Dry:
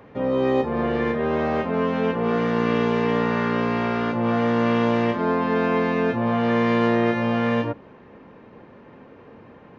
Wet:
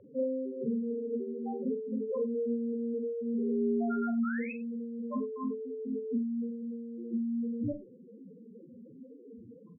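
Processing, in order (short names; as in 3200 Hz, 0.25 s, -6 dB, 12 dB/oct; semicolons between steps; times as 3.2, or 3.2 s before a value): 2.09–4.51 HPF 280 Hz 6 dB/oct; negative-ratio compressor -25 dBFS, ratio -0.5; 4.19–4.53 painted sound rise 1100–2700 Hz -27 dBFS; added harmonics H 2 -22 dB, 4 -14 dB, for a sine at -9.5 dBFS; loudest bins only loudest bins 2; air absorption 390 m; tapped delay 42/93 ms -9/-19.5 dB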